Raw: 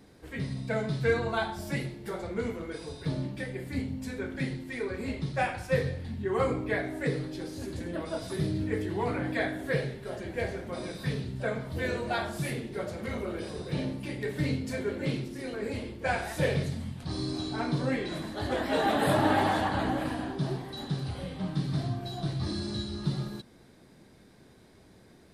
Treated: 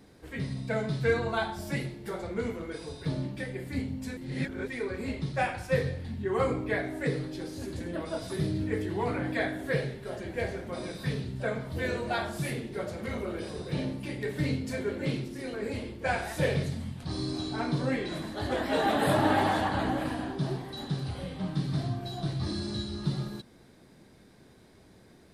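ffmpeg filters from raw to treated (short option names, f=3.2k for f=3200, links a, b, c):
-filter_complex "[0:a]asplit=3[a][b][c];[a]atrim=end=4.172[d];[b]atrim=start=4.168:end=4.682,asetpts=PTS-STARTPTS,areverse[e];[c]atrim=start=4.678[f];[d][e]acrossfade=d=0.004:c1=hsin:c2=hsin[g];[g][f]acrossfade=d=0.004:c1=hsin:c2=hsin"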